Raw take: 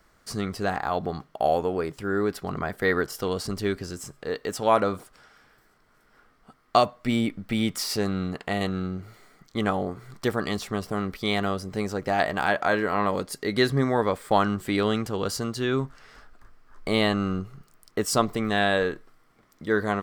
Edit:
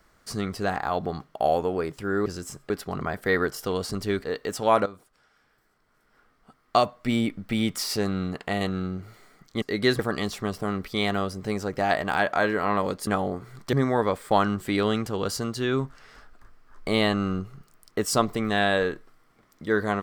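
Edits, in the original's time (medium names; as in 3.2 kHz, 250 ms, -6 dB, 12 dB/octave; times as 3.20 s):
3.80–4.24 s: move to 2.26 s
4.86–7.15 s: fade in, from -14.5 dB
9.62–10.28 s: swap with 13.36–13.73 s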